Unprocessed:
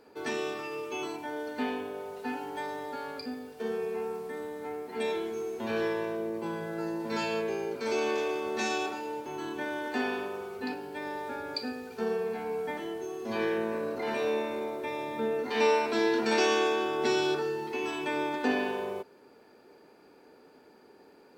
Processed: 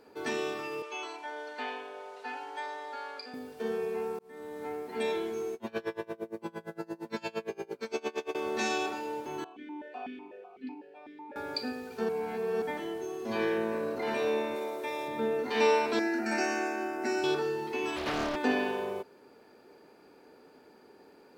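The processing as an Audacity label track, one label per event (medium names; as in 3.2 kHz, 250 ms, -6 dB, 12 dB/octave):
0.820000	3.340000	band-pass 620–6600 Hz
4.190000	4.630000	fade in
5.540000	8.350000	logarithmic tremolo 8.7 Hz, depth 28 dB
9.440000	11.360000	stepped vowel filter 8 Hz
12.090000	12.620000	reverse
14.550000	15.080000	tone controls bass -10 dB, treble +5 dB
15.990000	17.240000	static phaser centre 690 Hz, stages 8
17.960000	18.360000	loudspeaker Doppler distortion depth 0.68 ms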